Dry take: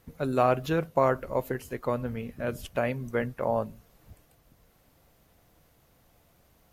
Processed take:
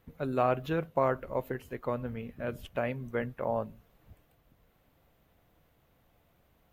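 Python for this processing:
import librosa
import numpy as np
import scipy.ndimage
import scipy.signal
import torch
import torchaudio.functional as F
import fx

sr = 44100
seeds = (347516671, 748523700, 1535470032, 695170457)

y = fx.band_shelf(x, sr, hz=7400.0, db=-8.5, octaves=1.7)
y = F.gain(torch.from_numpy(y), -4.0).numpy()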